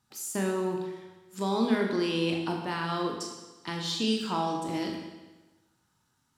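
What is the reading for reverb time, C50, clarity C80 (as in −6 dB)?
1.2 s, 4.0 dB, 5.5 dB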